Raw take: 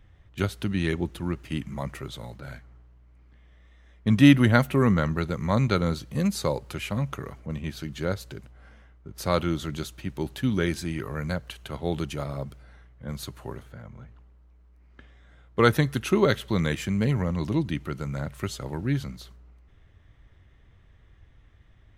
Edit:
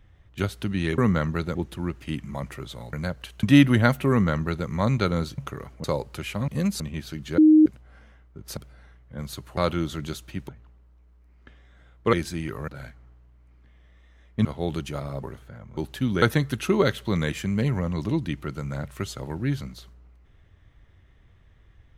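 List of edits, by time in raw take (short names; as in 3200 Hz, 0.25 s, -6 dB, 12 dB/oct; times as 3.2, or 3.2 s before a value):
2.36–4.13 swap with 11.19–11.69
4.8–5.37 copy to 0.98
6.08–6.4 swap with 7.04–7.5
8.08–8.36 bleep 310 Hz -10.5 dBFS
10.19–10.64 swap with 14.01–15.65
12.47–13.47 move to 9.27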